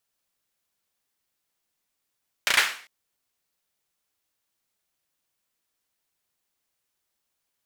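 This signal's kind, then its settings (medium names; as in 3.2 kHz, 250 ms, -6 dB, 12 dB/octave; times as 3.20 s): hand clap length 0.40 s, bursts 4, apart 34 ms, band 1.9 kHz, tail 0.45 s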